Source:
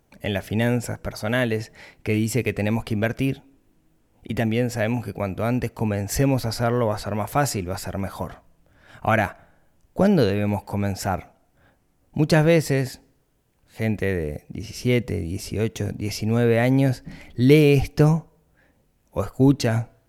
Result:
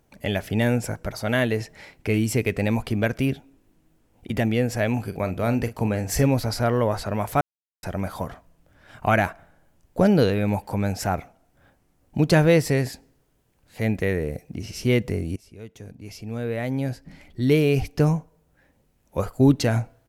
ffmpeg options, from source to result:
ffmpeg -i in.wav -filter_complex "[0:a]asplit=3[link_01][link_02][link_03];[link_01]afade=type=out:start_time=5.09:duration=0.02[link_04];[link_02]asplit=2[link_05][link_06];[link_06]adelay=43,volume=-12dB[link_07];[link_05][link_07]amix=inputs=2:normalize=0,afade=type=in:start_time=5.09:duration=0.02,afade=type=out:start_time=6.26:duration=0.02[link_08];[link_03]afade=type=in:start_time=6.26:duration=0.02[link_09];[link_04][link_08][link_09]amix=inputs=3:normalize=0,asplit=4[link_10][link_11][link_12][link_13];[link_10]atrim=end=7.41,asetpts=PTS-STARTPTS,afade=type=out:start_time=7.406:duration=0.004:curve=hsin[link_14];[link_11]atrim=start=7.41:end=7.83,asetpts=PTS-STARTPTS,volume=0[link_15];[link_12]atrim=start=7.83:end=15.36,asetpts=PTS-STARTPTS,afade=type=in:duration=0.004:curve=hsin,afade=type=out:start_time=7.526:duration=0.004:curve=hsin:silence=0.0841395[link_16];[link_13]atrim=start=15.36,asetpts=PTS-STARTPTS,afade=type=in:duration=3.92:silence=0.0841395[link_17];[link_14][link_15][link_16][link_17]concat=n=4:v=0:a=1" out.wav

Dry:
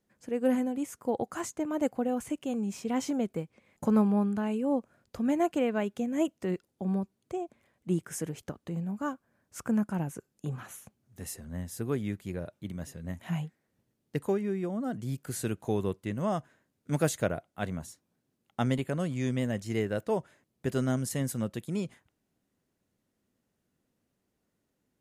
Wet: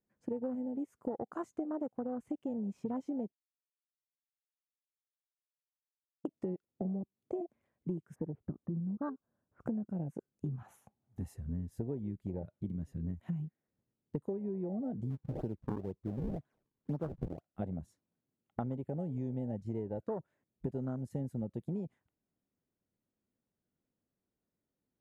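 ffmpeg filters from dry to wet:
ffmpeg -i in.wav -filter_complex "[0:a]asplit=3[link_01][link_02][link_03];[link_01]afade=type=out:start_time=8.14:duration=0.02[link_04];[link_02]lowpass=frequency=1500:width=0.5412,lowpass=frequency=1500:width=1.3066,afade=type=in:start_time=8.14:duration=0.02,afade=type=out:start_time=9.6:duration=0.02[link_05];[link_03]afade=type=in:start_time=9.6:duration=0.02[link_06];[link_04][link_05][link_06]amix=inputs=3:normalize=0,asettb=1/sr,asplit=3[link_07][link_08][link_09];[link_07]atrim=end=10.574[link_10];[link_08]atrim=start=10.57:end=11.34,asetpts=PTS-STARTPTS,afade=type=in:duration=0.004:curve=qsin,afade=type=out:start_time=0.766:duration=0.004:curve=qsin,equalizer=frequency=820:width=2.5:gain=11.5[link_11];[link_09]atrim=start=11.336[link_12];[link_10][link_11]acrossfade=duration=0.004:curve1=hsin:curve2=qsin[link_13];[link_13][link_12]acrossfade=duration=0.004:curve1=qsin:curve2=hsin,asettb=1/sr,asplit=3[link_14][link_15][link_16];[link_14]atrim=end=15.104[link_17];[link_15]atrim=start=15.1:end=17.47,asetpts=PTS-STARTPTS,afade=type=in:duration=0.004:curve=qsin,afade=type=out:start_time=2.366:duration=0.004:curve=qsin,acrusher=samples=39:mix=1:aa=0.000001:lfo=1:lforange=62.4:lforate=2[link_18];[link_16]atrim=start=17.466[link_19];[link_17][link_18]acrossfade=duration=0.004:curve1=hsin:curve2=qsin[link_20];[link_20][link_19]acrossfade=duration=0.004:curve1=qsin:curve2=hsin,asplit=3[link_21][link_22][link_23];[link_21]atrim=end=3.32,asetpts=PTS-STARTPTS,afade=type=out:start_time=3.316:duration=0.004:curve=hsin[link_24];[link_22]atrim=start=3.32:end=6.25,asetpts=PTS-STARTPTS,volume=0[link_25];[link_23]atrim=start=6.25,asetpts=PTS-STARTPTS,afade=type=in:duration=0.004:curve=hsin[link_26];[link_24][link_25][link_26]concat=n=3:v=0:a=1,afwtdn=0.0251,highshelf=frequency=2200:gain=-11,acompressor=threshold=-41dB:ratio=12,volume=7dB" out.wav

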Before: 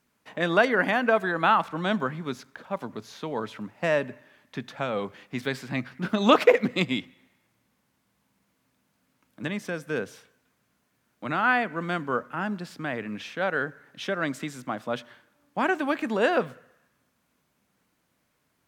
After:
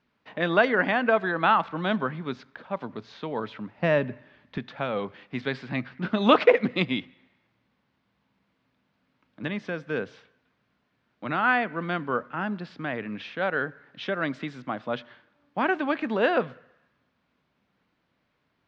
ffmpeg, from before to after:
ffmpeg -i in.wav -filter_complex "[0:a]asettb=1/sr,asplit=3[link_01][link_02][link_03];[link_01]atrim=end=3.784[link_04];[link_02]atrim=start=3.78:end=4.58,asetpts=PTS-STARTPTS,afade=type=in:duration=0.004:curve=qsin,afade=type=out:start_time=0.796:duration=0.004:curve=qsin,lowshelf=frequency=210:gain=10.5[link_05];[link_03]atrim=start=4.576[link_06];[link_04][link_05]acrossfade=duration=0.004:curve1=hsin:curve2=qsin[link_07];[link_07][link_06]acrossfade=duration=0.004:curve1=qsin:curve2=hsin,lowpass=frequency=4300:width=0.5412,lowpass=frequency=4300:width=1.3066" out.wav

